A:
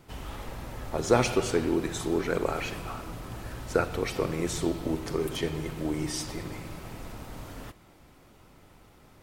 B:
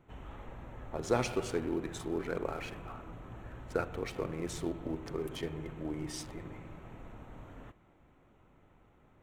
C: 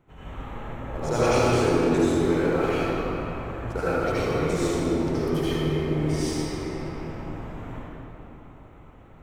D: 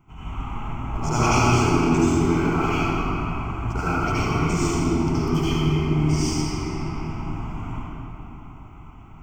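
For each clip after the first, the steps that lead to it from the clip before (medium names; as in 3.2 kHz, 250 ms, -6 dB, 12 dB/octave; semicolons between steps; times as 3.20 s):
local Wiener filter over 9 samples; trim -7.5 dB
reverberation RT60 3.5 s, pre-delay 68 ms, DRR -12.5 dB
static phaser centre 2.6 kHz, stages 8; trim +7 dB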